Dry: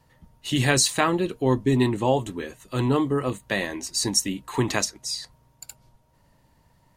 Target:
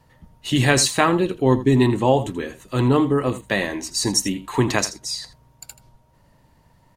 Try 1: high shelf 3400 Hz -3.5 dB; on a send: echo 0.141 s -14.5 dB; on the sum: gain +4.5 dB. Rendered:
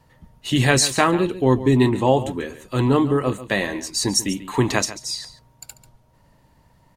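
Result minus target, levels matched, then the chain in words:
echo 59 ms late
high shelf 3400 Hz -3.5 dB; on a send: echo 82 ms -14.5 dB; on the sum: gain +4.5 dB

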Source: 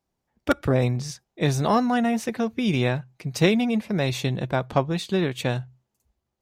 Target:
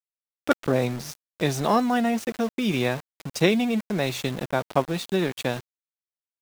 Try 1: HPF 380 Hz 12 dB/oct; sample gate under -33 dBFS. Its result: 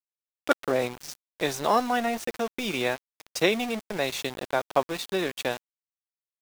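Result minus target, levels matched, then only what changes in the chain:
125 Hz band -9.5 dB
change: HPF 170 Hz 12 dB/oct

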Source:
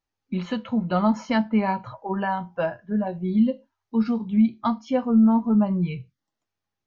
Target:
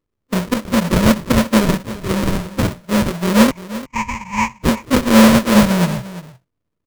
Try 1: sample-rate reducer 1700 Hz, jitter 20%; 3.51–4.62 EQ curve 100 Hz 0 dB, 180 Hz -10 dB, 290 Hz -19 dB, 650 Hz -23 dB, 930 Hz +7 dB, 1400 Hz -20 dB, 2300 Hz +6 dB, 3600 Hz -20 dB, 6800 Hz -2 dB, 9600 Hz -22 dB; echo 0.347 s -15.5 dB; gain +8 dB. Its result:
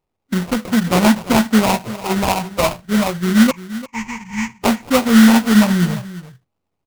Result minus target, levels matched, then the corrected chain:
sample-rate reducer: distortion -8 dB
sample-rate reducer 780 Hz, jitter 20%; 3.51–4.62 EQ curve 100 Hz 0 dB, 180 Hz -10 dB, 290 Hz -19 dB, 650 Hz -23 dB, 930 Hz +7 dB, 1400 Hz -20 dB, 2300 Hz +6 dB, 3600 Hz -20 dB, 6800 Hz -2 dB, 9600 Hz -22 dB; echo 0.347 s -15.5 dB; gain +8 dB

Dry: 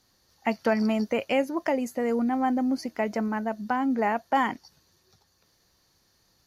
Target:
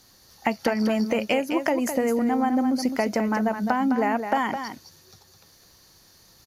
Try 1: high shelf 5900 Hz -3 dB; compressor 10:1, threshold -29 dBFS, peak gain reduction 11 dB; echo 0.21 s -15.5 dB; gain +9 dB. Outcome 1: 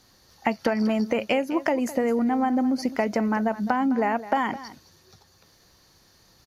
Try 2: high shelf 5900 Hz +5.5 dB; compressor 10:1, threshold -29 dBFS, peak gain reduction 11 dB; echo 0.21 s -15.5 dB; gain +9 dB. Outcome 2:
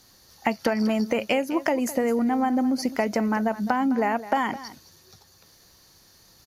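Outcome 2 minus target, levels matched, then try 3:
echo-to-direct -7.5 dB
high shelf 5900 Hz +5.5 dB; compressor 10:1, threshold -29 dBFS, peak gain reduction 11 dB; echo 0.21 s -8 dB; gain +9 dB

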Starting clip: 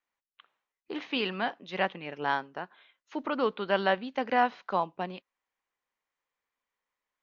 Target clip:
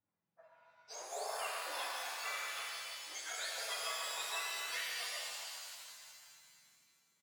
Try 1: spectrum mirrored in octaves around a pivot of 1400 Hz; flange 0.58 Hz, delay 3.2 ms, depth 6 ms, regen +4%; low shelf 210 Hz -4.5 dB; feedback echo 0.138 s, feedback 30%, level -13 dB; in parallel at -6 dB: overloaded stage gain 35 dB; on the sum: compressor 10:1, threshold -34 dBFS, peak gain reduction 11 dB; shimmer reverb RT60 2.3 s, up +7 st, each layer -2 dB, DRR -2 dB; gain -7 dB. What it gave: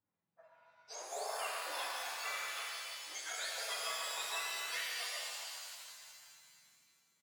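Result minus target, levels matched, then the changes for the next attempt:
overloaded stage: distortion -5 dB
change: overloaded stage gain 44.5 dB

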